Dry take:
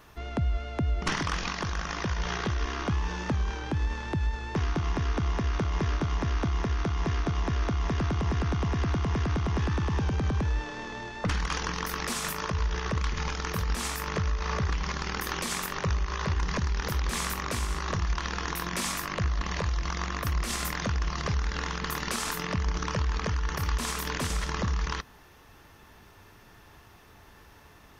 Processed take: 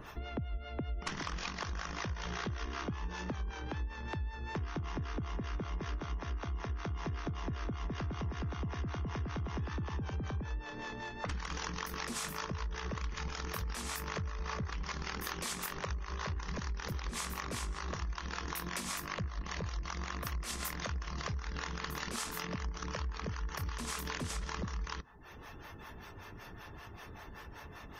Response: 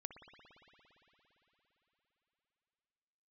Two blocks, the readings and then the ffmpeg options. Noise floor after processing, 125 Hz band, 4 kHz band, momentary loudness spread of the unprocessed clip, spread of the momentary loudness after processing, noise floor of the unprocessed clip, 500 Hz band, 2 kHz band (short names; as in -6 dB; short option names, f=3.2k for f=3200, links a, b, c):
-50 dBFS, -10.0 dB, -8.0 dB, 3 LU, 5 LU, -54 dBFS, -9.0 dB, -8.0 dB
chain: -filter_complex "[0:a]acompressor=mode=upward:threshold=-33dB:ratio=2.5,acrossover=split=460[a][b];[a]aeval=exprs='val(0)*(1-0.7/2+0.7/2*cos(2*PI*5.2*n/s))':c=same[c];[b]aeval=exprs='val(0)*(1-0.7/2-0.7/2*cos(2*PI*5.2*n/s))':c=same[d];[c][d]amix=inputs=2:normalize=0,highshelf=f=4.4k:g=2,acompressor=threshold=-32dB:ratio=10,afftdn=nr=26:nf=-56,volume=-2dB"